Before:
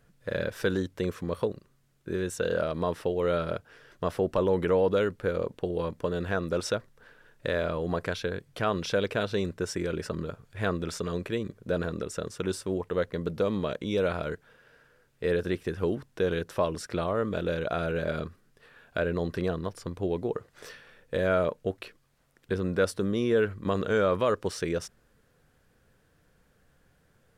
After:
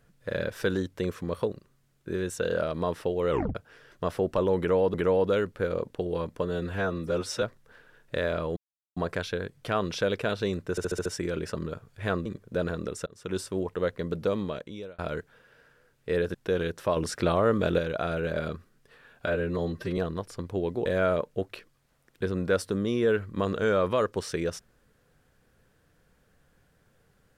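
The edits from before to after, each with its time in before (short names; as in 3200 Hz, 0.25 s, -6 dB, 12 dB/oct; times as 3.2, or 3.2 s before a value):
3.3 tape stop 0.25 s
4.58–4.94 loop, 2 plays
6.09–6.74 stretch 1.5×
7.88 insert silence 0.40 s
9.62 stutter 0.07 s, 6 plays
10.82–11.4 cut
12.21–12.52 fade in
13.45–14.13 fade out
15.49–16.06 cut
16.68–17.5 gain +5 dB
18.97–19.45 stretch 1.5×
20.33–21.14 cut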